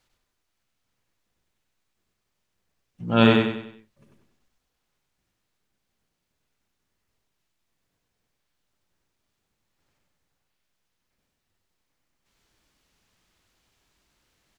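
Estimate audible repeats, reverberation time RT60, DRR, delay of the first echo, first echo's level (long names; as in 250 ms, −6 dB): 5, no reverb audible, no reverb audible, 96 ms, −3.0 dB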